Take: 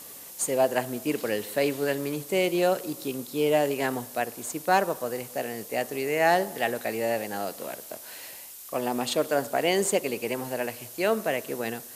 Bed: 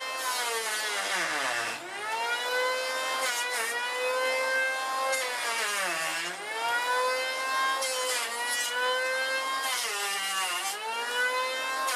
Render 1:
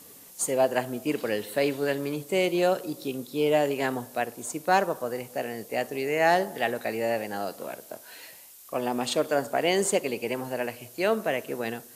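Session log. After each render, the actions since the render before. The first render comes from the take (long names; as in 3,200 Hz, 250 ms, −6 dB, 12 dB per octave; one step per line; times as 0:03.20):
noise reduction from a noise print 6 dB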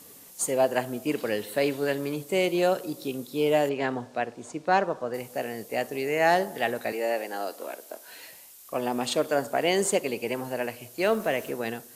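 0:03.69–0:05.14: high-frequency loss of the air 110 metres
0:06.92–0:08.08: high-pass filter 270 Hz 24 dB per octave
0:10.99–0:11.51: mu-law and A-law mismatch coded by mu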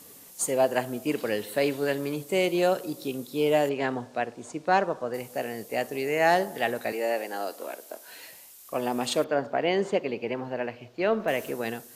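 0:09.24–0:11.28: high-frequency loss of the air 220 metres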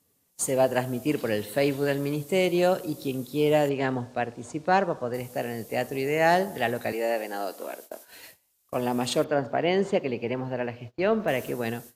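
noise gate −45 dBFS, range −21 dB
parametric band 74 Hz +12 dB 2.1 octaves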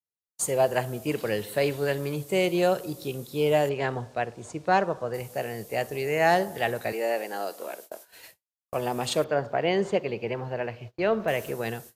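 downward expander −44 dBFS
parametric band 260 Hz −10 dB 0.34 octaves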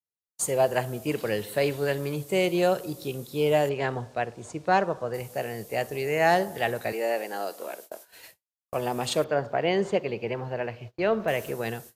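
no processing that can be heard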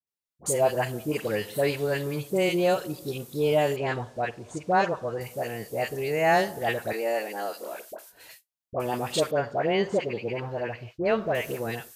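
all-pass dispersion highs, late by 71 ms, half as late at 1,100 Hz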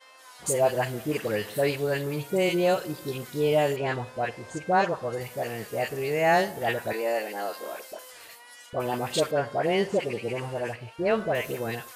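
mix in bed −19 dB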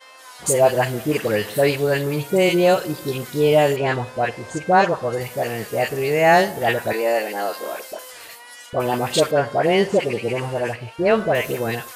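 level +7.5 dB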